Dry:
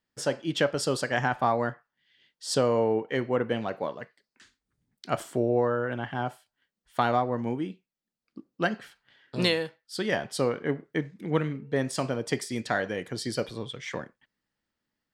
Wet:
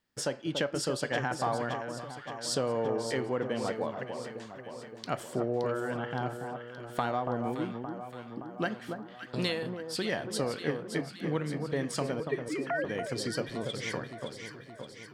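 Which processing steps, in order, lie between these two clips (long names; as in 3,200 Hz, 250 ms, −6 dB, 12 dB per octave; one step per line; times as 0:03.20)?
0:12.20–0:12.85: three sine waves on the formant tracks
downward compressor 2 to 1, threshold −38 dBFS, peak gain reduction 10.5 dB
delay that swaps between a low-pass and a high-pass 285 ms, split 1,300 Hz, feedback 76%, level −6 dB
level +3 dB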